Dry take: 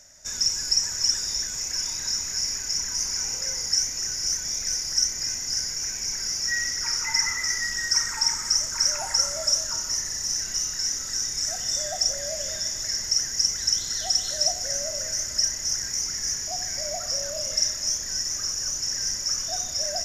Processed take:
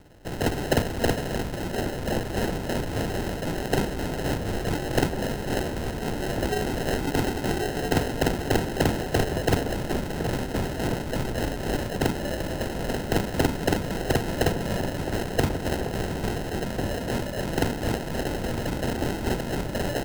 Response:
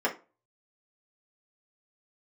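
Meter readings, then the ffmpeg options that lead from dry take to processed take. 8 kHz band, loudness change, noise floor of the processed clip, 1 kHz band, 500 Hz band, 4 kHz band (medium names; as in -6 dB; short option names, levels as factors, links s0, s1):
-17.0 dB, -3.5 dB, -33 dBFS, +9.5 dB, +13.0 dB, -12.0 dB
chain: -filter_complex "[0:a]acrusher=samples=38:mix=1:aa=0.000001,asplit=2[s0][s1];[s1]adelay=1399,volume=0.398,highshelf=f=4000:g=-31.5[s2];[s0][s2]amix=inputs=2:normalize=0"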